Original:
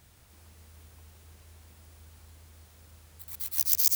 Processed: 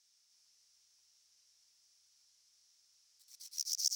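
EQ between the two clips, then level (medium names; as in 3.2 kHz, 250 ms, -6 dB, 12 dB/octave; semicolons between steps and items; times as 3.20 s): band-pass filter 5.5 kHz, Q 5.5; +2.0 dB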